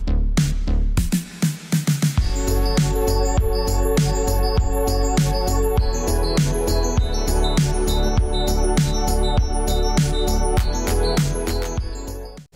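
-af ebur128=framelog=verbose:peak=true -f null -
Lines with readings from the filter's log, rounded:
Integrated loudness:
  I:         -21.0 LUFS
  Threshold: -31.1 LUFS
Loudness range:
  LRA:         0.9 LU
  Threshold: -40.8 LUFS
  LRA low:   -21.3 LUFS
  LRA high:  -20.3 LUFS
True peak:
  Peak:       -7.8 dBFS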